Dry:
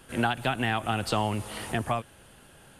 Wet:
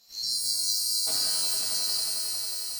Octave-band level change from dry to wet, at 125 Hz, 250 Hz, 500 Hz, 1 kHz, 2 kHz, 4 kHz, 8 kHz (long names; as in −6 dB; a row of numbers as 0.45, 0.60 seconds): below −25 dB, −23.0 dB, −17.0 dB, −19.0 dB, −15.5 dB, +12.0 dB, +18.0 dB